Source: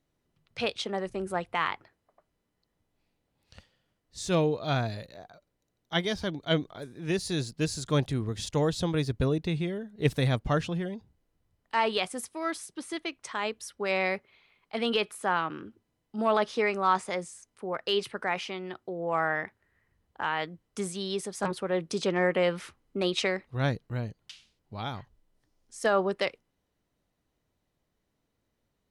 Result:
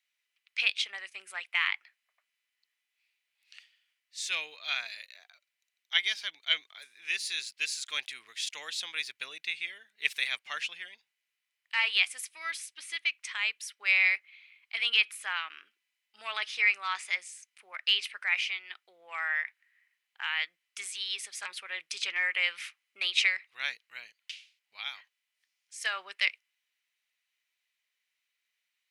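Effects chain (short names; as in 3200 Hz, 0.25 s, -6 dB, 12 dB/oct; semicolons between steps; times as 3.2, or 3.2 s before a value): resonant high-pass 2300 Hz, resonance Q 3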